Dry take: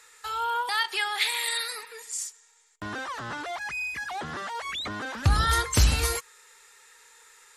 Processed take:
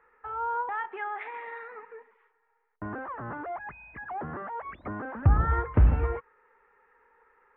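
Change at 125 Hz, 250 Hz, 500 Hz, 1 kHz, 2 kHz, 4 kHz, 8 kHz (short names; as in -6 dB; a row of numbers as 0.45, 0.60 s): +1.5 dB, +1.5 dB, +0.5 dB, -2.0 dB, -9.0 dB, under -30 dB, under -40 dB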